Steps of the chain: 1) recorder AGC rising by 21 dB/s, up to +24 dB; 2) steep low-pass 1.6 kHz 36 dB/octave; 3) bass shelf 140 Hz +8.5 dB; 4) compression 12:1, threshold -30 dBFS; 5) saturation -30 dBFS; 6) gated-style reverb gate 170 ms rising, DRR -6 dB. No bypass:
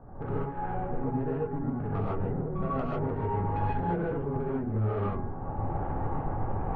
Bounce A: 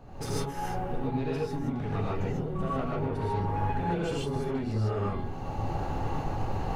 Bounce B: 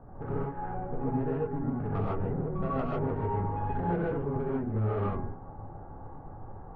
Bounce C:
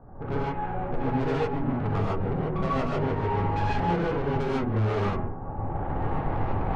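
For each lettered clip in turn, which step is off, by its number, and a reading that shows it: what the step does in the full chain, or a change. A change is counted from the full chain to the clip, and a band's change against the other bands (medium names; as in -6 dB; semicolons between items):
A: 2, 2 kHz band +3.0 dB; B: 1, momentary loudness spread change +11 LU; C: 4, mean gain reduction 7.5 dB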